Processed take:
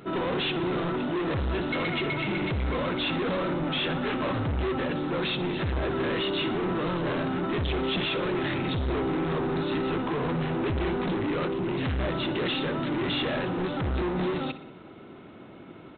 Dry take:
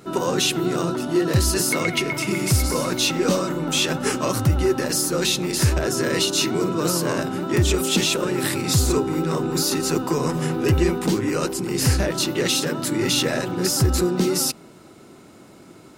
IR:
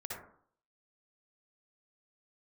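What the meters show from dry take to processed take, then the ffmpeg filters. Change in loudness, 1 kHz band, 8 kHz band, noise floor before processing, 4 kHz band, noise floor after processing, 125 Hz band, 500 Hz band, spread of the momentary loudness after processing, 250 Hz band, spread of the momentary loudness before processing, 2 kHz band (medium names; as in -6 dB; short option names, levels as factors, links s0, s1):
-7.0 dB, -3.5 dB, under -40 dB, -46 dBFS, -8.5 dB, -46 dBFS, -8.0 dB, -6.0 dB, 2 LU, -5.5 dB, 4 LU, -4.5 dB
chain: -af "aresample=8000,asoftclip=type=hard:threshold=0.0473,aresample=44100,aecho=1:1:61|122|183|244|305:0.178|0.096|0.0519|0.028|0.0151"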